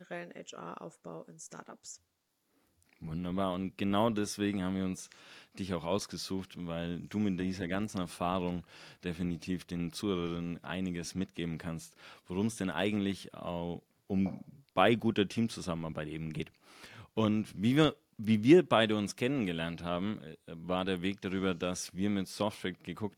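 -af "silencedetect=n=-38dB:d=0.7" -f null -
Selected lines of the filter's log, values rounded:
silence_start: 1.92
silence_end: 3.03 | silence_duration: 1.11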